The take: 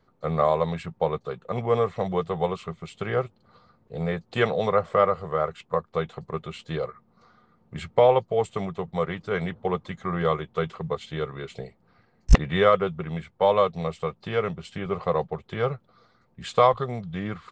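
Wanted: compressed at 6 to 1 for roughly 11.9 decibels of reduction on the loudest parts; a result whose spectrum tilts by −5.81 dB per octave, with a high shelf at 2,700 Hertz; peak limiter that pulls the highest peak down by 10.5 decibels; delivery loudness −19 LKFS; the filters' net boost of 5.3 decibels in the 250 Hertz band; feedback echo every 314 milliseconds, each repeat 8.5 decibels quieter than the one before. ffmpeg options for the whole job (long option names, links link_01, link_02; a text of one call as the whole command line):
ffmpeg -i in.wav -af "equalizer=frequency=250:width_type=o:gain=8.5,highshelf=frequency=2700:gain=-3.5,acompressor=threshold=-21dB:ratio=6,alimiter=limit=-18.5dB:level=0:latency=1,aecho=1:1:314|628|942|1256:0.376|0.143|0.0543|0.0206,volume=11.5dB" out.wav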